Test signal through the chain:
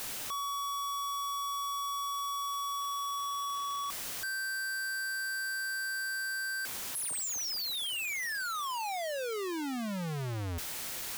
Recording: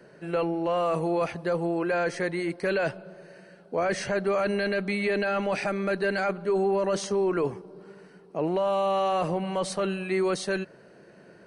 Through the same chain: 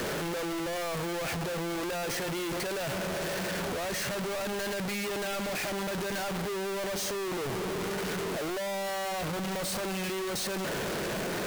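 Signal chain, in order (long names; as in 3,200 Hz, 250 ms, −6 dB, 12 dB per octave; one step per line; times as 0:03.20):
sign of each sample alone
level −5 dB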